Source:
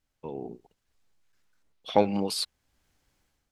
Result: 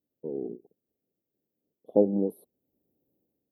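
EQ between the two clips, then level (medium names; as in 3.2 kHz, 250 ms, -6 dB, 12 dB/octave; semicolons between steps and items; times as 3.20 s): high-pass 240 Hz 12 dB/octave; inverse Chebyshev band-stop 1.4–7.5 kHz, stop band 60 dB; peaking EQ 4.1 kHz +12.5 dB 1.6 oct; +5.5 dB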